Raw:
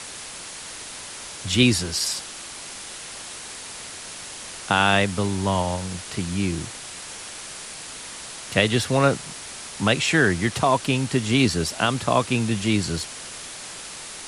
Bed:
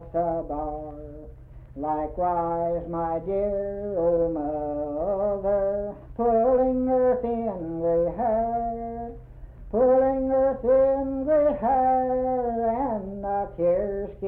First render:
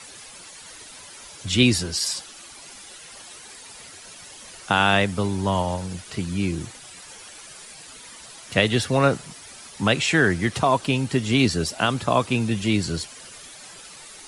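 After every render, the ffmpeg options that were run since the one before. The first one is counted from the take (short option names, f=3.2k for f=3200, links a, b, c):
-af "afftdn=nr=11:nf=-38"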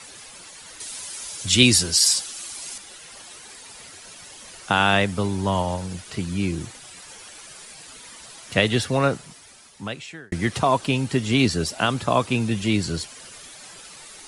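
-filter_complex "[0:a]asettb=1/sr,asplit=3[a][b][c];[a]atrim=end=0.804[d];[b]atrim=start=0.8:end=2.78,asetpts=PTS-STARTPTS,afade=t=in:d=0.004:c=qsin,afade=t=out:st=1.976:d=0.004:c=qsin,equalizer=f=10k:t=o:w=2.5:g=10[e];[c]atrim=start=2.776[f];[d][e]acrossfade=d=0.004:c1=hsin:c2=qsin[g];[g][f]acrossfade=d=0.004:c1=qsin:c2=hsin,asplit=2[h][i];[h]atrim=end=10.32,asetpts=PTS-STARTPTS,afade=t=out:st=8.75:d=1.57[j];[i]atrim=start=10.32,asetpts=PTS-STARTPTS,afade=t=in:d=0.004:c=hsin[k];[j][k]concat=n=2:v=0:a=1"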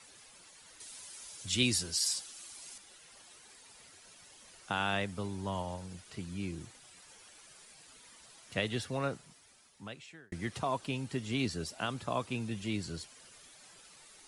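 -af "volume=-14dB"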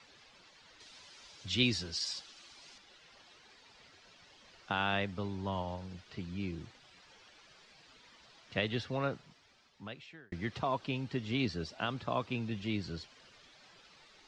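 -af "lowpass=f=5k:w=0.5412,lowpass=f=5k:w=1.3066"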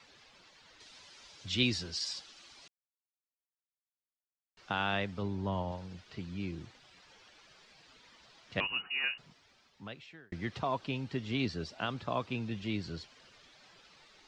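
-filter_complex "[0:a]asettb=1/sr,asplit=3[a][b][c];[a]atrim=end=5.224[d];[b]atrim=start=5.22:end=5.72,asetpts=PTS-STARTPTS,afade=t=in:d=0.004:c=qsin,afade=t=out:st=0.496:d=0.004:c=qsin,tiltshelf=f=970:g=3.5[e];[c]atrim=start=5.716[f];[d][e]acrossfade=d=0.004:c1=hsin:c2=qsin[g];[g][f]acrossfade=d=0.004:c1=qsin:c2=hsin,asettb=1/sr,asplit=3[h][i][j];[h]atrim=end=8.604[k];[i]atrim=start=8.6:end=9.18,asetpts=PTS-STARTPTS,afade=t=in:d=0.004:c=qsin,afade=t=out:st=0.576:d=0.004:c=qsin,lowpass=f=2.6k:t=q:w=0.5098,lowpass=f=2.6k:t=q:w=0.6013,lowpass=f=2.6k:t=q:w=0.9,lowpass=f=2.6k:t=q:w=2.563,afreqshift=-3000[l];[j]atrim=start=9.176[m];[k][l]acrossfade=d=0.004:c1=hsin:c2=qsin[n];[n][m]acrossfade=d=0.004:c1=qsin:c2=hsin,asplit=3[o][p][q];[o]atrim=end=2.68,asetpts=PTS-STARTPTS,afade=t=out:st=2.676:d=0.004:c=hsin[r];[p]atrim=start=2.68:end=4.57,asetpts=PTS-STARTPTS,volume=0[s];[q]atrim=start=4.57,asetpts=PTS-STARTPTS,afade=t=in:d=0.004:c=hsin[t];[r][s][t]concat=n=3:v=0:a=1"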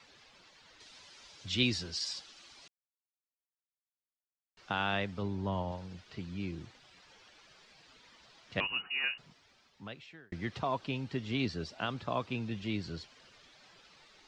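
-af anull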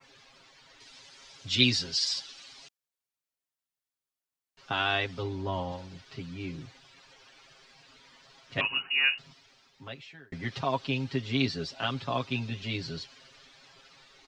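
-af "adynamicequalizer=threshold=0.00355:dfrequency=4200:dqfactor=0.71:tfrequency=4200:tqfactor=0.71:attack=5:release=100:ratio=0.375:range=3:mode=boostabove:tftype=bell,aecho=1:1:7.4:0.98"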